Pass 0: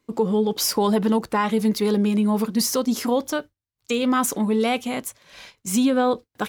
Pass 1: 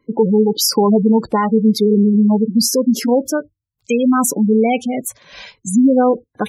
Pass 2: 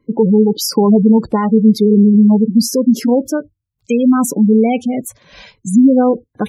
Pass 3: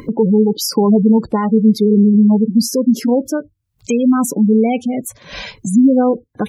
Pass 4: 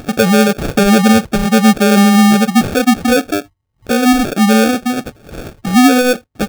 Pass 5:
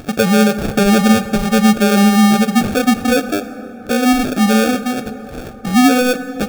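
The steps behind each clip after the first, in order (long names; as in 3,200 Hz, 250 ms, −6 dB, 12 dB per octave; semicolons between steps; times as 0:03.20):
dynamic equaliser 1,300 Hz, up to −4 dB, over −36 dBFS, Q 1; gate on every frequency bin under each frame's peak −15 dB strong; level +8 dB
low-shelf EQ 400 Hz +9.5 dB; level −3.5 dB
upward compression, threshold −15 dBFS; level −1.5 dB
sample-rate reduction 1,000 Hz, jitter 0%; level +2 dB
dense smooth reverb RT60 3.8 s, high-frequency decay 0.4×, DRR 11.5 dB; level −2.5 dB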